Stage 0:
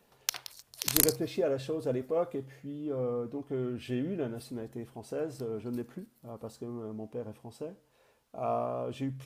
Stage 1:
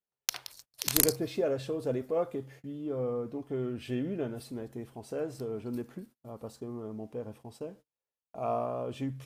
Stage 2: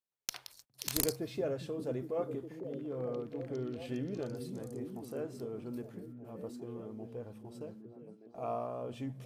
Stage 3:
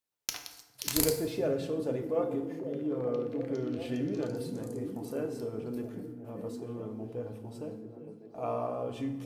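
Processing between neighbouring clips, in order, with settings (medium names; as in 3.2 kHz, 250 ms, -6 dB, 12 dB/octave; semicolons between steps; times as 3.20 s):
gate -52 dBFS, range -34 dB
repeats whose band climbs or falls 408 ms, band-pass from 150 Hz, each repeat 0.7 oct, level -2 dB; one-sided clip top -15 dBFS; trim -5.5 dB
FDN reverb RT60 1.1 s, low-frequency decay 0.95×, high-frequency decay 0.65×, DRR 5 dB; trim +3.5 dB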